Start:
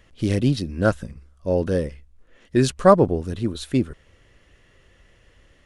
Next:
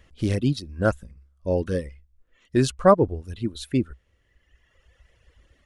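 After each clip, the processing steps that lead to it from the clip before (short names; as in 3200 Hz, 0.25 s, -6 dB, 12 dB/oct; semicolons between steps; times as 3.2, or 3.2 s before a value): reverb removal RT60 1.8 s; bell 63 Hz +9.5 dB 0.56 oct; gain -2 dB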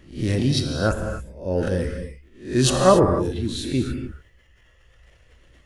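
spectral swells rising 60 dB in 0.38 s; transient shaper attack -2 dB, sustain +8 dB; non-linear reverb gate 0.31 s flat, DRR 4.5 dB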